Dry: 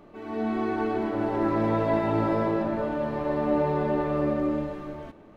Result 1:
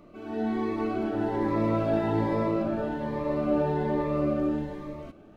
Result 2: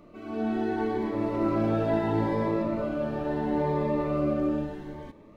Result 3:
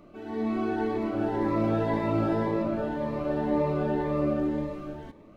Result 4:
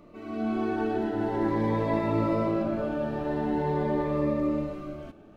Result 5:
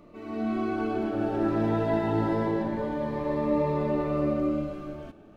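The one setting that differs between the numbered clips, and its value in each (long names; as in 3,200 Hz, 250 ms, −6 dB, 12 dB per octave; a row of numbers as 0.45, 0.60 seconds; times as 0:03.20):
phaser whose notches keep moving one way, speed: 1.2, 0.74, 1.9, 0.44, 0.25 Hertz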